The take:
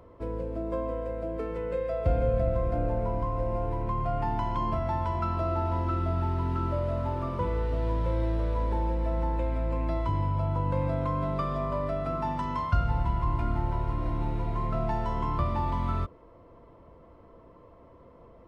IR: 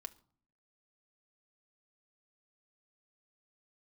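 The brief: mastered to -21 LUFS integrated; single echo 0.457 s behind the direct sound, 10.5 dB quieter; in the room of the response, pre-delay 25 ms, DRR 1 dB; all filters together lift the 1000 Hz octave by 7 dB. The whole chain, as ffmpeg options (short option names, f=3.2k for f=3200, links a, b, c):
-filter_complex "[0:a]equalizer=f=1k:t=o:g=8,aecho=1:1:457:0.299,asplit=2[a][b];[1:a]atrim=start_sample=2205,adelay=25[c];[b][c]afir=irnorm=-1:irlink=0,volume=3.5dB[d];[a][d]amix=inputs=2:normalize=0,volume=3.5dB"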